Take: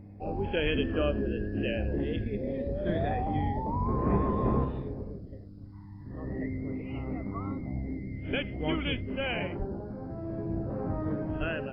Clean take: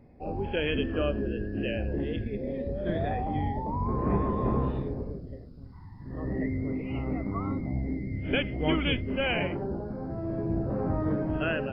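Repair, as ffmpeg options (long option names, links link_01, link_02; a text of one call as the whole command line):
ffmpeg -i in.wav -filter_complex "[0:a]bandreject=frequency=100.5:width_type=h:width=4,bandreject=frequency=201:width_type=h:width=4,bandreject=frequency=301.5:width_type=h:width=4,asplit=3[link_01][link_02][link_03];[link_01]afade=type=out:start_time=0.63:duration=0.02[link_04];[link_02]highpass=frequency=140:width=0.5412,highpass=frequency=140:width=1.3066,afade=type=in:start_time=0.63:duration=0.02,afade=type=out:start_time=0.75:duration=0.02[link_05];[link_03]afade=type=in:start_time=0.75:duration=0.02[link_06];[link_04][link_05][link_06]amix=inputs=3:normalize=0,asplit=3[link_07][link_08][link_09];[link_07]afade=type=out:start_time=9.58:duration=0.02[link_10];[link_08]highpass=frequency=140:width=0.5412,highpass=frequency=140:width=1.3066,afade=type=in:start_time=9.58:duration=0.02,afade=type=out:start_time=9.7:duration=0.02[link_11];[link_09]afade=type=in:start_time=9.7:duration=0.02[link_12];[link_10][link_11][link_12]amix=inputs=3:normalize=0,asplit=3[link_13][link_14][link_15];[link_13]afade=type=out:start_time=11.39:duration=0.02[link_16];[link_14]highpass=frequency=140:width=0.5412,highpass=frequency=140:width=1.3066,afade=type=in:start_time=11.39:duration=0.02,afade=type=out:start_time=11.51:duration=0.02[link_17];[link_15]afade=type=in:start_time=11.51:duration=0.02[link_18];[link_16][link_17][link_18]amix=inputs=3:normalize=0,asetnsamples=nb_out_samples=441:pad=0,asendcmd='4.64 volume volume 4dB',volume=0dB" out.wav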